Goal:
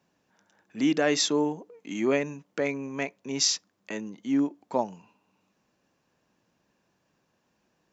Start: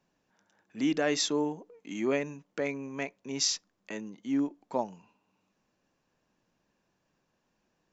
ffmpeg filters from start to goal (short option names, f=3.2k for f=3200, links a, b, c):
-af "highpass=53,volume=4dB"